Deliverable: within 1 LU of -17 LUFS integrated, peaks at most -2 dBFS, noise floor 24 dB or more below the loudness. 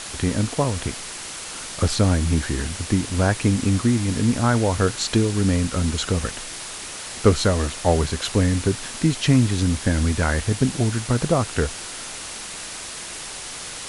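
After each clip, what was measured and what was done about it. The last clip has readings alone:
noise floor -34 dBFS; noise floor target -47 dBFS; loudness -22.5 LUFS; peak level -2.5 dBFS; loudness target -17.0 LUFS
-> noise print and reduce 13 dB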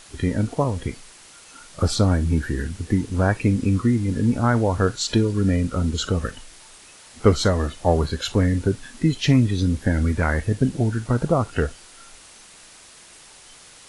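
noise floor -47 dBFS; loudness -22.0 LUFS; peak level -2.5 dBFS; loudness target -17.0 LUFS
-> trim +5 dB; peak limiter -2 dBFS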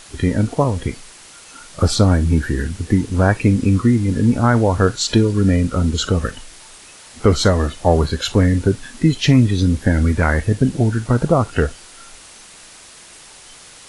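loudness -17.0 LUFS; peak level -2.0 dBFS; noise floor -42 dBFS

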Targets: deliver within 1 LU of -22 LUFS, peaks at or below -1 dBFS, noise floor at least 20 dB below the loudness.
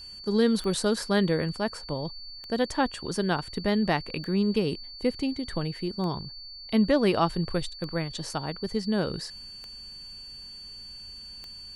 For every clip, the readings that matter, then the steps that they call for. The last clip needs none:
clicks found 7; steady tone 4.5 kHz; tone level -41 dBFS; loudness -28.0 LUFS; peak level -10.5 dBFS; loudness target -22.0 LUFS
-> de-click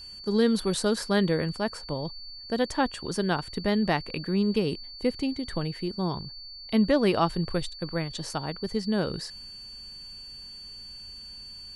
clicks found 0; steady tone 4.5 kHz; tone level -41 dBFS
-> band-stop 4.5 kHz, Q 30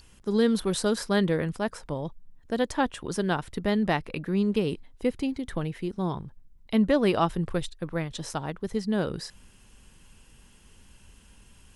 steady tone not found; loudness -28.0 LUFS; peak level -11.0 dBFS; loudness target -22.0 LUFS
-> trim +6 dB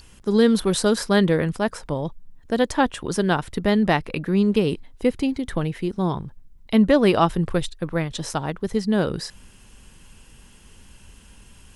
loudness -22.0 LUFS; peak level -5.0 dBFS; noise floor -50 dBFS

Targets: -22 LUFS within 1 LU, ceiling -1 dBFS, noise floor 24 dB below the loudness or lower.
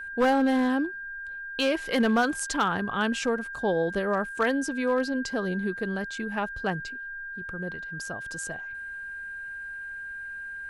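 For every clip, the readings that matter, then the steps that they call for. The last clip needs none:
clipped samples 0.4%; clipping level -17.0 dBFS; steady tone 1.6 kHz; tone level -35 dBFS; loudness -28.5 LUFS; peak level -17.0 dBFS; loudness target -22.0 LUFS
-> clip repair -17 dBFS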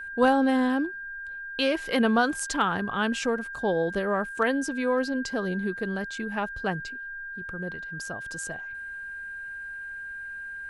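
clipped samples 0.0%; steady tone 1.6 kHz; tone level -35 dBFS
-> band-stop 1.6 kHz, Q 30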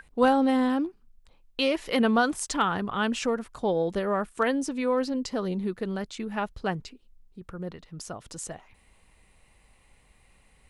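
steady tone not found; loudness -27.5 LUFS; peak level -9.5 dBFS; loudness target -22.0 LUFS
-> trim +5.5 dB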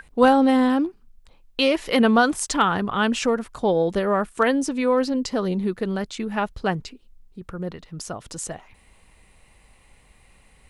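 loudness -22.0 LUFS; peak level -4.0 dBFS; noise floor -56 dBFS

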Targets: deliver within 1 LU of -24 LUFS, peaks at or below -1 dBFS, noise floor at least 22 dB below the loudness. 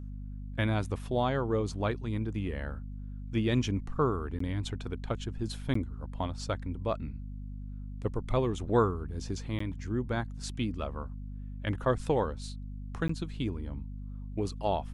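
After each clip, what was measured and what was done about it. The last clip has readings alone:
dropouts 4; longest dropout 14 ms; hum 50 Hz; highest harmonic 250 Hz; hum level -38 dBFS; loudness -33.5 LUFS; peak level -12.5 dBFS; loudness target -24.0 LUFS
-> interpolate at 4.39/5.74/9.59/13.08 s, 14 ms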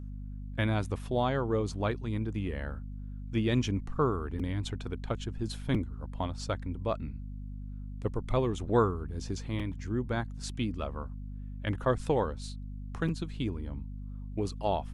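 dropouts 0; hum 50 Hz; highest harmonic 250 Hz; hum level -38 dBFS
-> hum notches 50/100/150/200/250 Hz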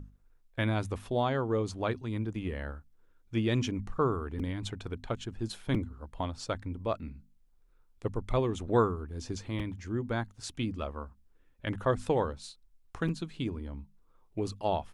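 hum not found; loudness -33.5 LUFS; peak level -13.0 dBFS; loudness target -24.0 LUFS
-> trim +9.5 dB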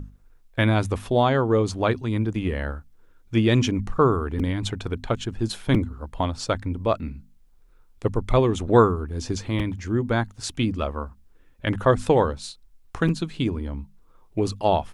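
loudness -24.0 LUFS; peak level -3.5 dBFS; noise floor -55 dBFS

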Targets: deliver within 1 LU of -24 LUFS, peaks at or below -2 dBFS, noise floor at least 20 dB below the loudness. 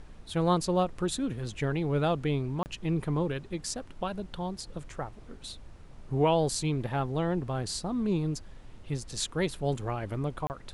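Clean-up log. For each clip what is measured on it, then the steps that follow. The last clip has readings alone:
dropouts 2; longest dropout 29 ms; noise floor -49 dBFS; noise floor target -51 dBFS; loudness -31.0 LUFS; peak level -13.5 dBFS; loudness target -24.0 LUFS
-> interpolate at 2.63/10.47 s, 29 ms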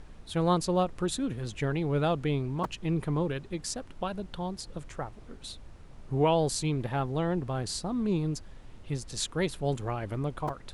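dropouts 0; noise floor -49 dBFS; noise floor target -51 dBFS
-> noise print and reduce 6 dB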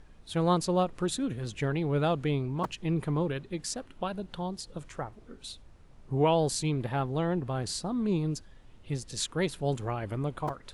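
noise floor -54 dBFS; loudness -31.0 LUFS; peak level -14.0 dBFS; loudness target -24.0 LUFS
-> trim +7 dB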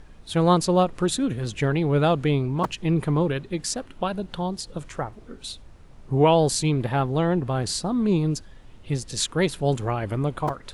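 loudness -24.0 LUFS; peak level -7.0 dBFS; noise floor -47 dBFS

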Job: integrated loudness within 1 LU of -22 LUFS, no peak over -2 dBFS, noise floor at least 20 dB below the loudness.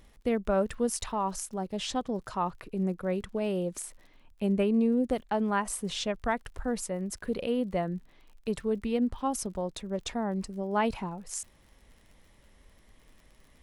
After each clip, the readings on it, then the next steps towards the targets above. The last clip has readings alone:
tick rate 48 per s; loudness -31.5 LUFS; peak level -15.5 dBFS; loudness target -22.0 LUFS
-> de-click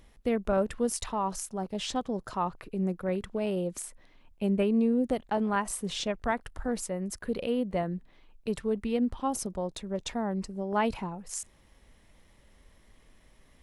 tick rate 0.073 per s; loudness -31.5 LUFS; peak level -15.5 dBFS; loudness target -22.0 LUFS
-> trim +9.5 dB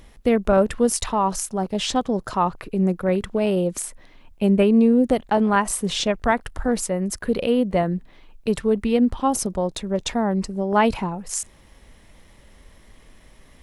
loudness -22.0 LUFS; peak level -6.0 dBFS; noise floor -51 dBFS

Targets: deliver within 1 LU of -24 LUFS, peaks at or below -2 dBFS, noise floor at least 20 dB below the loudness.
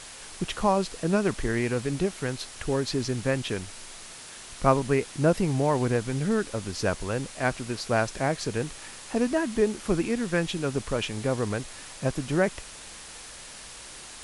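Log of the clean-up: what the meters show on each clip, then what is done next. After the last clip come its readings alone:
noise floor -44 dBFS; noise floor target -48 dBFS; loudness -27.5 LUFS; peak level -7.0 dBFS; loudness target -24.0 LUFS
-> noise reduction 6 dB, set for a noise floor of -44 dBFS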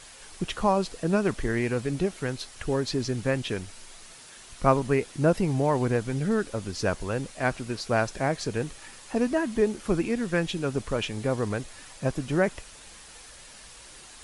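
noise floor -48 dBFS; loudness -27.5 LUFS; peak level -7.0 dBFS; loudness target -24.0 LUFS
-> trim +3.5 dB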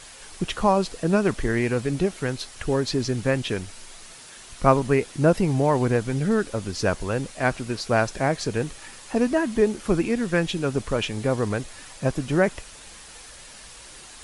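loudness -24.0 LUFS; peak level -3.5 dBFS; noise floor -45 dBFS

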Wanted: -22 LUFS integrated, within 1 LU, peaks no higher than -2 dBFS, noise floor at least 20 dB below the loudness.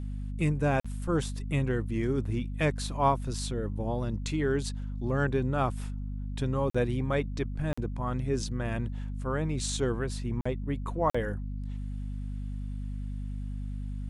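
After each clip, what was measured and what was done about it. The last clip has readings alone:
dropouts 5; longest dropout 45 ms; hum 50 Hz; highest harmonic 250 Hz; hum level -32 dBFS; loudness -31.5 LUFS; peak level -11.5 dBFS; loudness target -22.0 LUFS
-> interpolate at 0.80/6.70/7.73/10.41/11.10 s, 45 ms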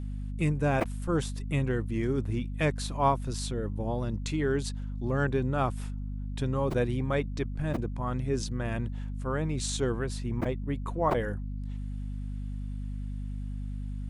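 dropouts 0; hum 50 Hz; highest harmonic 250 Hz; hum level -32 dBFS
-> hum notches 50/100/150/200/250 Hz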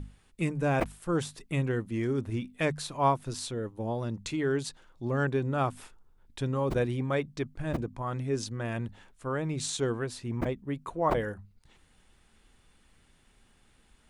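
hum not found; loudness -31.5 LUFS; peak level -12.0 dBFS; loudness target -22.0 LUFS
-> trim +9.5 dB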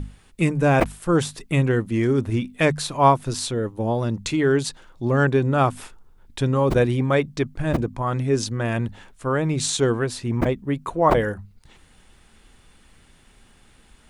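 loudness -22.0 LUFS; peak level -2.5 dBFS; noise floor -54 dBFS

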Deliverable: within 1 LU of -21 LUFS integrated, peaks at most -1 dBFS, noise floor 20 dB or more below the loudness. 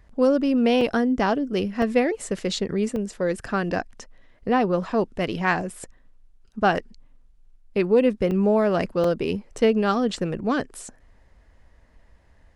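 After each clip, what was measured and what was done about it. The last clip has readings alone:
dropouts 7; longest dropout 3.4 ms; loudness -23.0 LUFS; peak level -8.0 dBFS; loudness target -21.0 LUFS
-> interpolate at 0.81/1.82/2.96/5.70/8.31/9.04/9.58 s, 3.4 ms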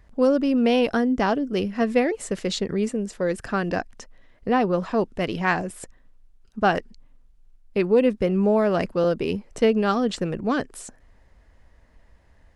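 dropouts 0; loudness -23.0 LUFS; peak level -8.0 dBFS; loudness target -21.0 LUFS
-> trim +2 dB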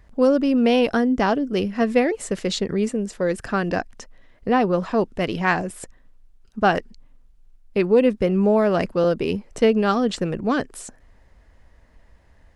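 loudness -21.0 LUFS; peak level -6.0 dBFS; noise floor -55 dBFS

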